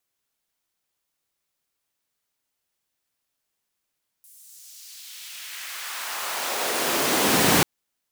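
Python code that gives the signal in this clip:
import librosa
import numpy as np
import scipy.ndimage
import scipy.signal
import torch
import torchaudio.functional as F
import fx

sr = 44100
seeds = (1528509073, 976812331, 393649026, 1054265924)

y = fx.riser_noise(sr, seeds[0], length_s=3.39, colour='pink', kind='highpass', start_hz=10000.0, end_hz=160.0, q=1.2, swell_db=28, law='exponential')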